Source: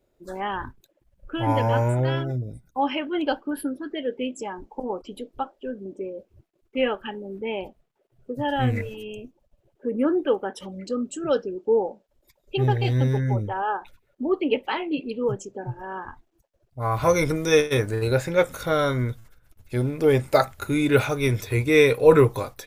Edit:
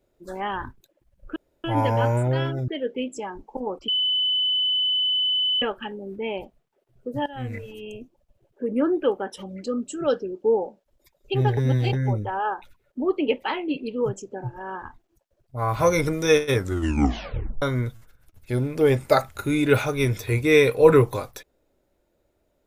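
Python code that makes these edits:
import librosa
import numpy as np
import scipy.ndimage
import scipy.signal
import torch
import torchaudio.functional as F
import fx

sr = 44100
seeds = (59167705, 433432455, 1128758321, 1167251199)

y = fx.edit(x, sr, fx.insert_room_tone(at_s=1.36, length_s=0.28),
    fx.cut(start_s=2.4, length_s=1.51),
    fx.bleep(start_s=5.11, length_s=1.74, hz=3010.0, db=-19.5),
    fx.fade_in_from(start_s=8.49, length_s=0.7, floor_db=-18.5),
    fx.reverse_span(start_s=12.8, length_s=0.36),
    fx.tape_stop(start_s=17.77, length_s=1.08), tone=tone)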